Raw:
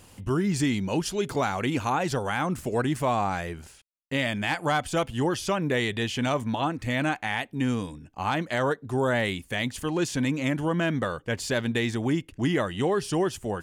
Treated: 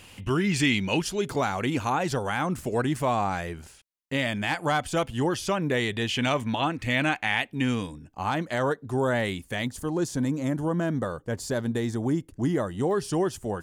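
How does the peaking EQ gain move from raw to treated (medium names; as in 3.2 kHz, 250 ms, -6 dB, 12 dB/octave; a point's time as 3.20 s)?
peaking EQ 2.6 kHz 1.2 oct
+11 dB
from 1.02 s -0.5 dB
from 6.09 s +6 dB
from 7.87 s -3.5 dB
from 9.67 s -14.5 dB
from 12.91 s -6 dB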